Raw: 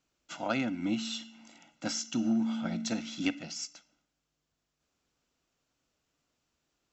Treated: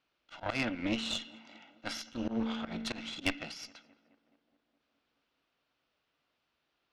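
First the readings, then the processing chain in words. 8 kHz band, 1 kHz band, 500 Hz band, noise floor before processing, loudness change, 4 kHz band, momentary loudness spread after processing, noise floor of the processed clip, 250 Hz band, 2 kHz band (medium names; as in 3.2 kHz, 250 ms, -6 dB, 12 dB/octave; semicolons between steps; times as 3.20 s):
no reading, -1.5 dB, -1.0 dB, -84 dBFS, -3.0 dB, +0.5 dB, 16 LU, -82 dBFS, -5.5 dB, +2.0 dB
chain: low-pass 4.1 kHz 24 dB/octave; bass shelf 350 Hz -11.5 dB; in parallel at -5 dB: saturation -31.5 dBFS, distortion -12 dB; on the sum: Chebyshev shaper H 4 -11 dB, 6 -29 dB, 7 -26 dB, 8 -34 dB, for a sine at -16.5 dBFS; slow attack 113 ms; on a send: tape echo 211 ms, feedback 73%, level -22 dB, low-pass 2.1 kHz; on the sum: trim +3.5 dB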